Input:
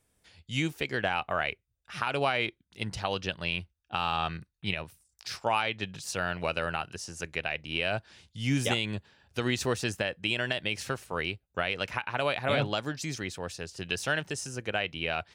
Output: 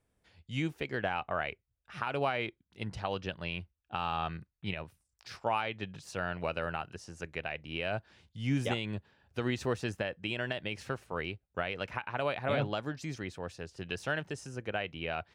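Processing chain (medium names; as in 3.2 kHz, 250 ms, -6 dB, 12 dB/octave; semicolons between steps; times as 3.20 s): treble shelf 3.2 kHz -12 dB; trim -2.5 dB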